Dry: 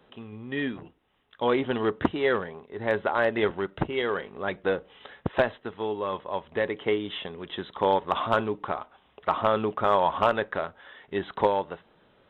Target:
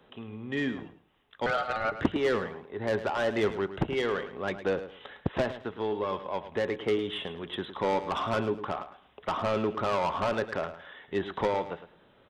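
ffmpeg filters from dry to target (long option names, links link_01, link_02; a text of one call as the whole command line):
ffmpeg -i in.wav -filter_complex "[0:a]acrossover=split=360[link_01][link_02];[link_02]asoftclip=type=tanh:threshold=-25dB[link_03];[link_01][link_03]amix=inputs=2:normalize=0,asettb=1/sr,asplit=3[link_04][link_05][link_06];[link_04]atrim=end=1.464[link_07];[link_05]atrim=start=1.46:end=1.92,asetpts=PTS-STARTPTS,afade=type=in:duration=0.004:curve=qsin,afade=type=out:start_time=0.456:duration=0.004:curve=qsin,aeval=exprs='val(0)*sin(2*PI*1000*n/s)':channel_layout=same[link_08];[link_06]atrim=start=1.916[link_09];[link_07][link_08]acrossfade=duration=0.004:curve1=hsin:curve2=qsin[link_10];[link_10][link_09]acrossfade=duration=0.004:curve1=qsin:curve2=hsin,aecho=1:1:107|214|321:0.237|0.0522|0.0115" out.wav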